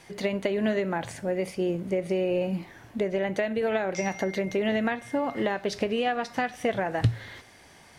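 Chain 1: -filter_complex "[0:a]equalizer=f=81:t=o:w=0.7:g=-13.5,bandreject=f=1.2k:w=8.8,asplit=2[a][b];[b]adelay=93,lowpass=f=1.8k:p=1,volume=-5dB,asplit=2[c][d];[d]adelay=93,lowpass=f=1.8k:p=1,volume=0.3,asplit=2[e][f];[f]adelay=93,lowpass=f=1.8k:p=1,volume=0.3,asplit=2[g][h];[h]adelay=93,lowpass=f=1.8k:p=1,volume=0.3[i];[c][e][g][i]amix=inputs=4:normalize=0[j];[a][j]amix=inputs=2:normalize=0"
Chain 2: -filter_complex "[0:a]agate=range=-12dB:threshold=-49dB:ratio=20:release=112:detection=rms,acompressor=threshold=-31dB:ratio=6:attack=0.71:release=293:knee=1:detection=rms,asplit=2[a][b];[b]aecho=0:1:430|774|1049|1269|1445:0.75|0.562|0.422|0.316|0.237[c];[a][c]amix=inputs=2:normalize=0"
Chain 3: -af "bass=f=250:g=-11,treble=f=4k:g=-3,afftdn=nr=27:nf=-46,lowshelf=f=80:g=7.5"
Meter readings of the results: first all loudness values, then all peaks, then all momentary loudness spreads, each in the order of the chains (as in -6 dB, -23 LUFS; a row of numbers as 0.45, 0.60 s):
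-27.5, -35.5, -30.0 LUFS; -12.0, -20.5, -13.5 dBFS; 5, 3, 5 LU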